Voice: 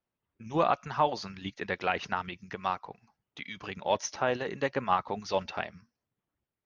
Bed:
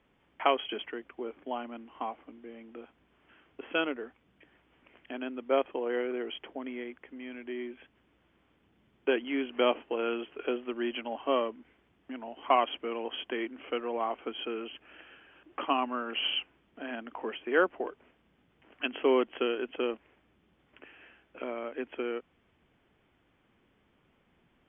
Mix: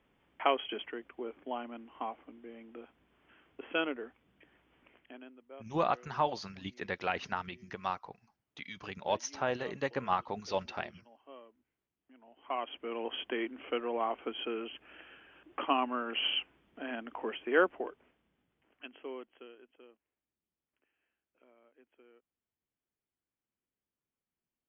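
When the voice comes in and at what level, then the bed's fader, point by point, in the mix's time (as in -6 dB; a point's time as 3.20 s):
5.20 s, -4.0 dB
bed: 4.88 s -2.5 dB
5.54 s -24 dB
11.96 s -24 dB
13.03 s -1 dB
17.64 s -1 dB
19.97 s -28 dB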